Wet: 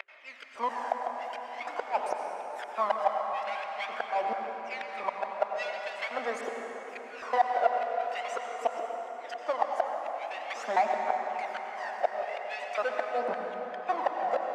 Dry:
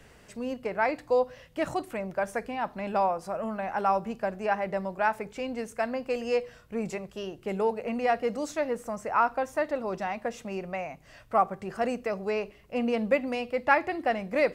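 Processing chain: slices in reverse order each 0.229 s, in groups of 4; steep high-pass 220 Hz 36 dB/oct; band shelf 3000 Hz -12 dB 1.2 oct; transient shaper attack +11 dB, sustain -4 dB; compressor 20:1, threshold -24 dBFS, peak gain reduction 17 dB; power-law curve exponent 0.5; phaser 0.45 Hz, delay 1.6 ms, feedback 65%; flipped gate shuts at -13 dBFS, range -31 dB; LFO high-pass square 0.9 Hz 740–2300 Hz; tape spacing loss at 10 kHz 21 dB; plate-style reverb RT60 4.8 s, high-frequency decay 0.5×, pre-delay 75 ms, DRR 1.5 dB; gain -3.5 dB

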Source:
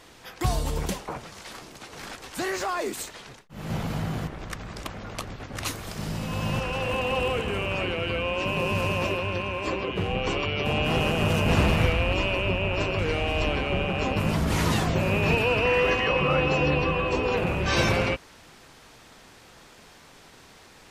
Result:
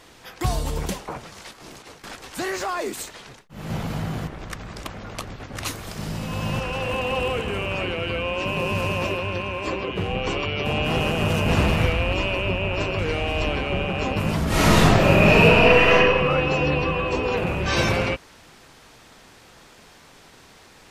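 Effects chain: 1.51–2.04 negative-ratio compressor -45 dBFS, ratio -0.5; 14.48–15.93 reverb throw, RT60 1.2 s, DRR -7 dB; gain +1.5 dB

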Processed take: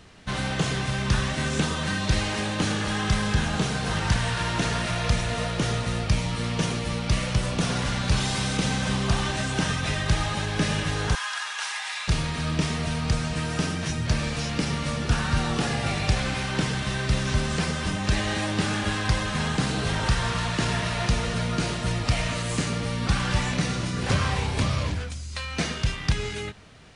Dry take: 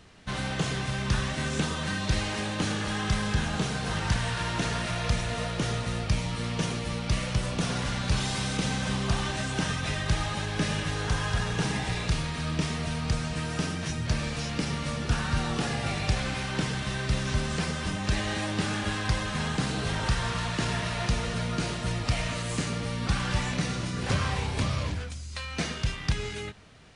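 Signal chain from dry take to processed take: 11.15–12.08 HPF 980 Hz 24 dB/oct; gain +3.5 dB

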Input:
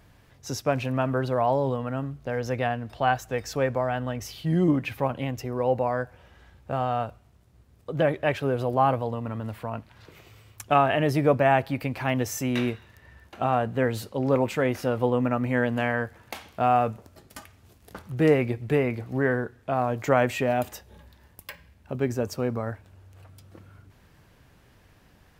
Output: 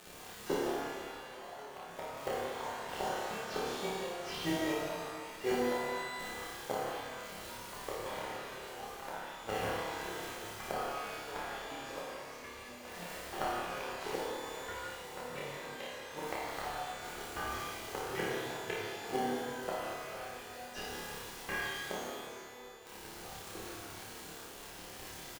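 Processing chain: low-pass opened by the level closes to 1100 Hz, open at -20.5 dBFS; Bessel high-pass 590 Hz, order 2; comb 2.5 ms, depth 56%; crackle 210/s -41 dBFS; in parallel at -6 dB: sample-and-hold 35×; on the sum: flipped gate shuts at -27 dBFS, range -34 dB; echoes that change speed 80 ms, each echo +3 st, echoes 3, each echo -6 dB; on a send: flutter echo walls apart 4.9 m, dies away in 0.54 s; on the sum: shimmer reverb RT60 1.7 s, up +12 st, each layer -8 dB, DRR -5 dB; gain +2 dB

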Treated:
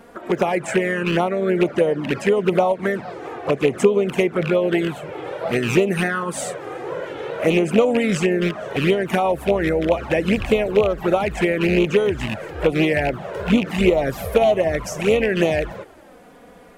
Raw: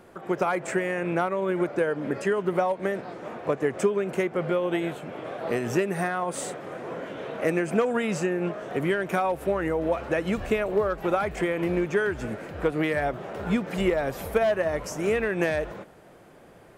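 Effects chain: rattling part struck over -31 dBFS, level -20 dBFS; harmoniser +3 st -12 dB; envelope flanger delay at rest 4.6 ms, full sweep at -20 dBFS; gain +8.5 dB

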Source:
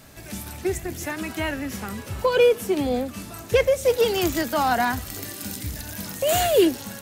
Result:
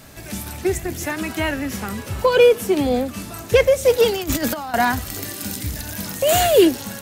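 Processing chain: 4.1–4.74 negative-ratio compressor -27 dBFS, ratio -0.5; gain +4.5 dB

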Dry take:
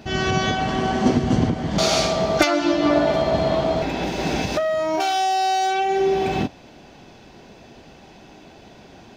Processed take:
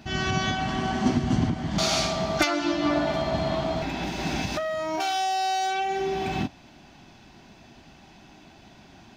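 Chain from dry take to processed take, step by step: bell 480 Hz -13 dB 0.53 oct; gain -3.5 dB

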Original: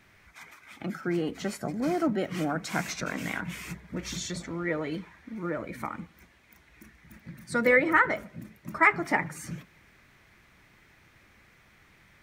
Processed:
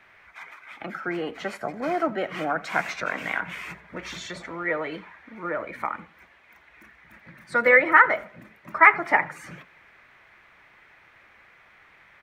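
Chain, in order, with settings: three-band isolator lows -15 dB, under 480 Hz, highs -16 dB, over 3100 Hz; echo 85 ms -22 dB; gain +7.5 dB

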